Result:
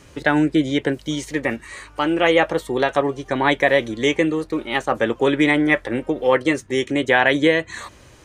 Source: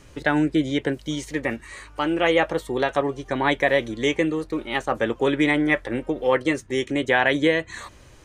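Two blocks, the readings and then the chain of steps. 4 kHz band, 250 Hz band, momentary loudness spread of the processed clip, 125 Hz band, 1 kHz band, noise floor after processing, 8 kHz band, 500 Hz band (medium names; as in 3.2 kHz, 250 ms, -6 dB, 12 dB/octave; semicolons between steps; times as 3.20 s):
+3.5 dB, +3.5 dB, 9 LU, +2.5 dB, +3.5 dB, -47 dBFS, +3.5 dB, +3.5 dB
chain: high-pass 70 Hz 6 dB/octave; trim +3.5 dB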